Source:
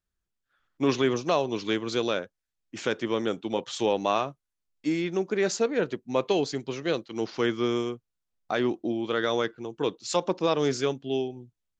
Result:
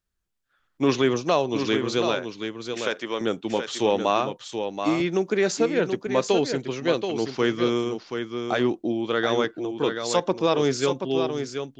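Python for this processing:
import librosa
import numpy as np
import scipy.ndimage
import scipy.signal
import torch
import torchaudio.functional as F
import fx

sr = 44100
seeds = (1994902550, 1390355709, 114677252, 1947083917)

y = fx.highpass(x, sr, hz=620.0, slope=6, at=(2.15, 3.21))
y = y + 10.0 ** (-7.0 / 20.0) * np.pad(y, (int(729 * sr / 1000.0), 0))[:len(y)]
y = fx.band_squash(y, sr, depth_pct=40, at=(5.0, 6.07))
y = y * 10.0 ** (3.0 / 20.0)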